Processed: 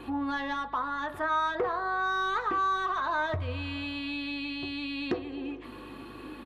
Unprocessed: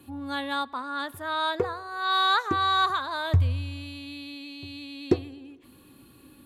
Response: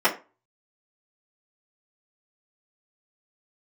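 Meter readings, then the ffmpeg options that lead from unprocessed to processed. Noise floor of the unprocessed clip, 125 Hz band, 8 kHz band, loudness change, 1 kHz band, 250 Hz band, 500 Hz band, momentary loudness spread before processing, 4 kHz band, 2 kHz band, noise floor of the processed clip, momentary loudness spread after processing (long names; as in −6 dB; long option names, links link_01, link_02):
−54 dBFS, −11.5 dB, can't be measured, −4.0 dB, −2.0 dB, −0.5 dB, −2.5 dB, 17 LU, −8.5 dB, −1.0 dB, −45 dBFS, 12 LU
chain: -filter_complex "[0:a]asplit=2[link_01][link_02];[link_02]highpass=frequency=720:poles=1,volume=22dB,asoftclip=type=tanh:threshold=-9dB[link_03];[link_01][link_03]amix=inputs=2:normalize=0,lowpass=frequency=3100:poles=1,volume=-6dB,acompressor=threshold=-30dB:ratio=6,aemphasis=mode=reproduction:type=75kf,aeval=exprs='val(0)+0.002*(sin(2*PI*50*n/s)+sin(2*PI*2*50*n/s)/2+sin(2*PI*3*50*n/s)/3+sin(2*PI*4*50*n/s)/4+sin(2*PI*5*50*n/s)/5)':channel_layout=same,asplit=2[link_04][link_05];[1:a]atrim=start_sample=2205[link_06];[link_05][link_06]afir=irnorm=-1:irlink=0,volume=-21dB[link_07];[link_04][link_07]amix=inputs=2:normalize=0,aresample=32000,aresample=44100"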